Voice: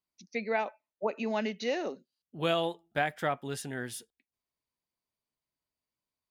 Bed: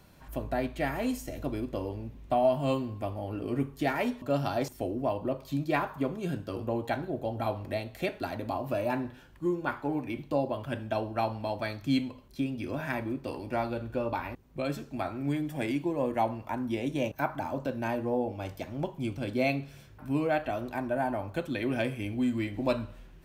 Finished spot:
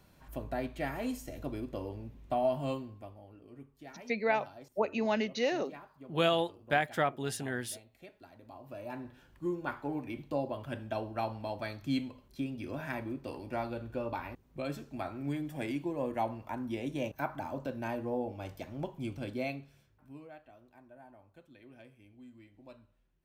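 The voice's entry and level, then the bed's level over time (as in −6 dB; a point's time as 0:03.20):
3.75 s, +1.0 dB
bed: 0:02.62 −5 dB
0:03.42 −21 dB
0:08.34 −21 dB
0:09.31 −5 dB
0:19.24 −5 dB
0:20.43 −25 dB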